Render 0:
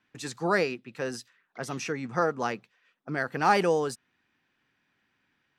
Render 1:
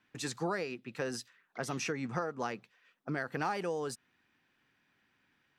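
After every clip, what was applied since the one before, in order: compression 8:1, threshold -31 dBFS, peak gain reduction 14.5 dB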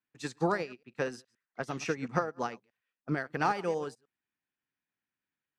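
chunks repeated in reverse 104 ms, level -13.5 dB; treble shelf 12 kHz -10.5 dB; upward expansion 2.5:1, over -49 dBFS; trim +7.5 dB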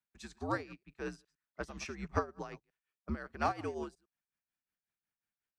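frequency shift -77 Hz; tremolo 5.5 Hz, depth 72%; trim -2.5 dB

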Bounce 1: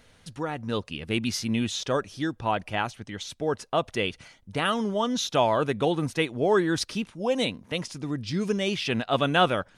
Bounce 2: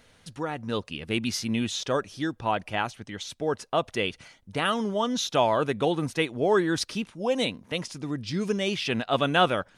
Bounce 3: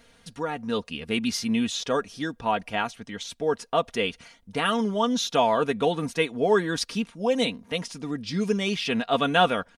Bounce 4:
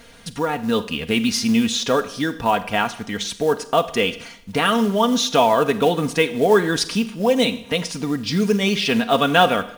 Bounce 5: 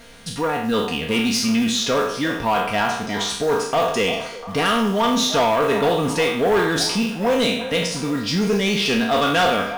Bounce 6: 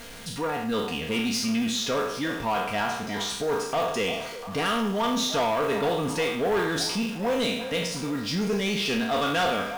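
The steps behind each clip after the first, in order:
bass shelf 120 Hz -4 dB
comb 4.3 ms, depth 53%
in parallel at +1 dB: compression 12:1, threshold -33 dBFS, peak gain reduction 19 dB; on the sum: companded quantiser 6-bit; Schroeder reverb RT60 0.69 s, combs from 31 ms, DRR 12.5 dB; trim +4 dB
spectral sustain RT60 0.62 s; saturation -13 dBFS, distortion -12 dB; repeats whose band climbs or falls 348 ms, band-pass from 710 Hz, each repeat 0.7 oct, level -9.5 dB
jump at every zero crossing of -31.5 dBFS; trim -7.5 dB

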